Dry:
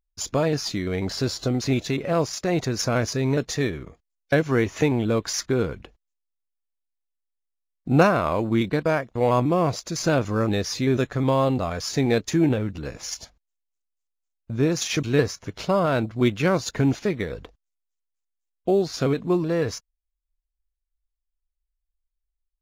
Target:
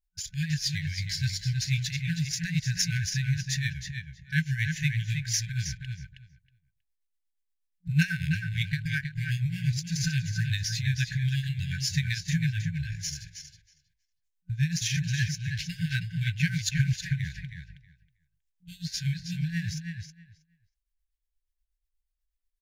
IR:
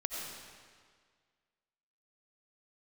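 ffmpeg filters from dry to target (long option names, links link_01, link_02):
-filter_complex "[0:a]afftfilt=real='re*(1-between(b*sr/4096,180,1500))':imag='im*(1-between(b*sr/4096,180,1500))':win_size=4096:overlap=0.75,tremolo=f=8.3:d=0.74,asplit=2[link_01][link_02];[link_02]adelay=319,lowpass=frequency=4500:poles=1,volume=-5.5dB,asplit=2[link_03][link_04];[link_04]adelay=319,lowpass=frequency=4500:poles=1,volume=0.16,asplit=2[link_05][link_06];[link_06]adelay=319,lowpass=frequency=4500:poles=1,volume=0.16[link_07];[link_01][link_03][link_05][link_07]amix=inputs=4:normalize=0,volume=2dB"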